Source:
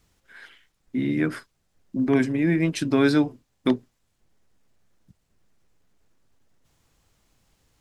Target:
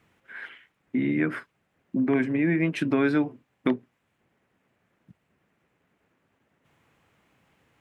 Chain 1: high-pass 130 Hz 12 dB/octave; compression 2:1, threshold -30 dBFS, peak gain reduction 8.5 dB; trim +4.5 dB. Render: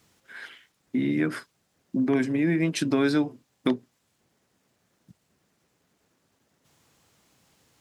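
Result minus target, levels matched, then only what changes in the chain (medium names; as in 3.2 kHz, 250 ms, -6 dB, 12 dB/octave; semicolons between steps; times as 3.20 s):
8 kHz band +13.5 dB
add after high-pass: resonant high shelf 3.4 kHz -11.5 dB, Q 1.5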